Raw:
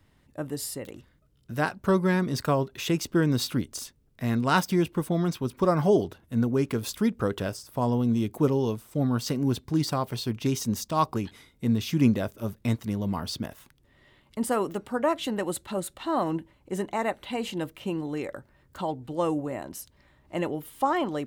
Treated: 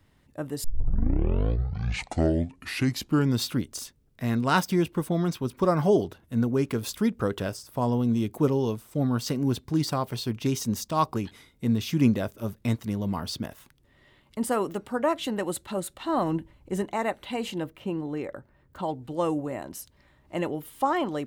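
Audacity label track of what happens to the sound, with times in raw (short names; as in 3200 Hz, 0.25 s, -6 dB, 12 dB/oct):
0.640000	0.640000	tape start 2.85 s
16.090000	16.830000	low shelf 110 Hz +11 dB
17.600000	18.830000	bell 8600 Hz -8.5 dB 2.9 oct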